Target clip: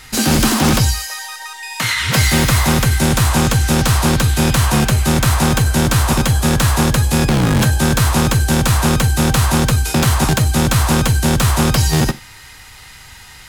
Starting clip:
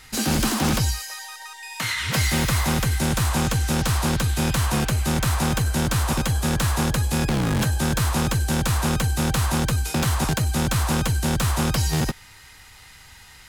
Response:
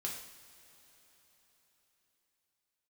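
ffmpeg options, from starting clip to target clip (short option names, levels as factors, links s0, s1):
-filter_complex "[0:a]asplit=2[s0][s1];[1:a]atrim=start_sample=2205,atrim=end_sample=3969[s2];[s1][s2]afir=irnorm=-1:irlink=0,volume=0.355[s3];[s0][s3]amix=inputs=2:normalize=0,volume=2"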